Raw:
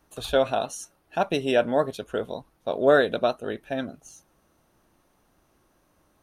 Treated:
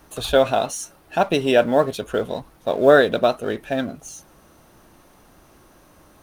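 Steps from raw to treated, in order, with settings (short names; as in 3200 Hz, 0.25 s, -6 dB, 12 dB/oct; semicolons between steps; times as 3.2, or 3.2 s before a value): G.711 law mismatch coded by mu; gain +5 dB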